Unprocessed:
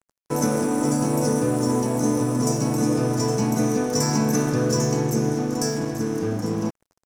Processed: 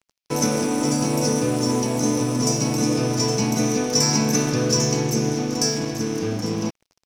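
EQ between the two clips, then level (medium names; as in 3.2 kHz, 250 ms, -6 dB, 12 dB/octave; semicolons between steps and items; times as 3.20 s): high-order bell 3.6 kHz +9 dB; 0.0 dB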